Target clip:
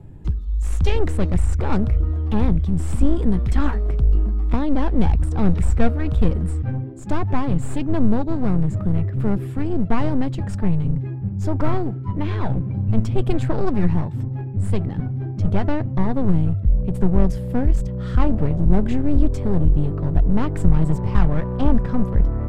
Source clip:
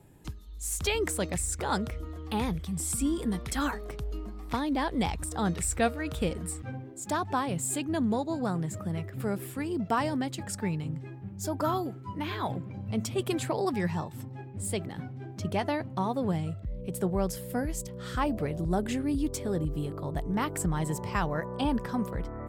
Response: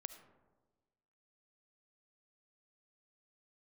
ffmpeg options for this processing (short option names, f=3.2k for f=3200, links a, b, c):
-af "acontrast=55,aeval=exprs='clip(val(0),-1,0.0316)':c=same,aemphasis=mode=reproduction:type=riaa,volume=-1.5dB"